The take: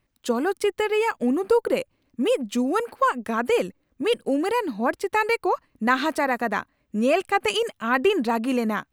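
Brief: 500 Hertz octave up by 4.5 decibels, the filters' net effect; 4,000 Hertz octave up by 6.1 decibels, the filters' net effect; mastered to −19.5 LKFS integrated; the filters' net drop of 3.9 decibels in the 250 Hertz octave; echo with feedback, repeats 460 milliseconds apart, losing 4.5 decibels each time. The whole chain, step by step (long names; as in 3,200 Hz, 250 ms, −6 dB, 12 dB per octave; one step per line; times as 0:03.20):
parametric band 250 Hz −7 dB
parametric band 500 Hz +7 dB
parametric band 4,000 Hz +9 dB
repeating echo 460 ms, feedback 60%, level −4.5 dB
level −0.5 dB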